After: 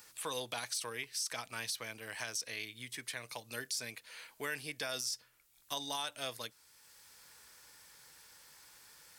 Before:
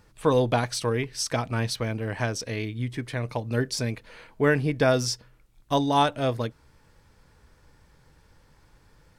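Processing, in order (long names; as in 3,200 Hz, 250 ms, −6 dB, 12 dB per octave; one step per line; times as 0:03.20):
first difference
brickwall limiter −29 dBFS, peak gain reduction 11 dB
low-shelf EQ 95 Hz +10 dB
multiband upward and downward compressor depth 40%
level +4 dB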